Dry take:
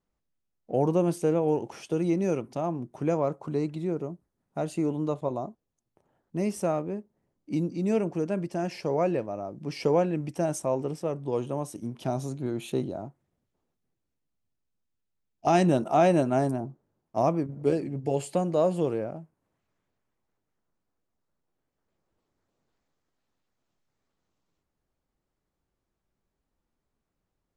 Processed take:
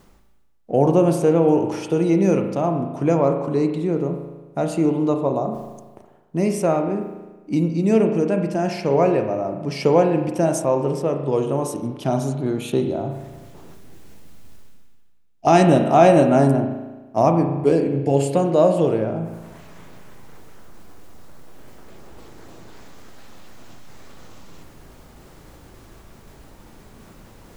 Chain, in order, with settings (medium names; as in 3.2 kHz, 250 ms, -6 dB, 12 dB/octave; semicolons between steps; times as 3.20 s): reverse; upward compressor, threshold -30 dBFS; reverse; spring tank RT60 1.2 s, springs 36 ms, chirp 30 ms, DRR 5.5 dB; trim +7.5 dB